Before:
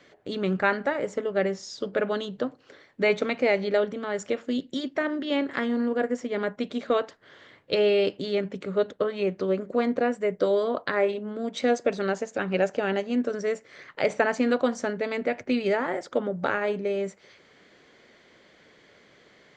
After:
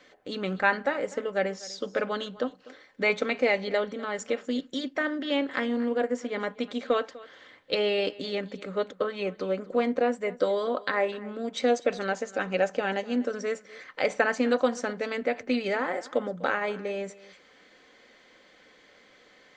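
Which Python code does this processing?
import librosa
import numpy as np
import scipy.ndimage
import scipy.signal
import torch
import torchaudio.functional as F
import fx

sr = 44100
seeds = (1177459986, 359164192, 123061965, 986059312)

p1 = fx.peak_eq(x, sr, hz=130.0, db=-6.5, octaves=2.9)
p2 = p1 + 0.38 * np.pad(p1, (int(3.9 * sr / 1000.0), 0))[:len(p1)]
y = p2 + fx.echo_single(p2, sr, ms=248, db=-20.0, dry=0)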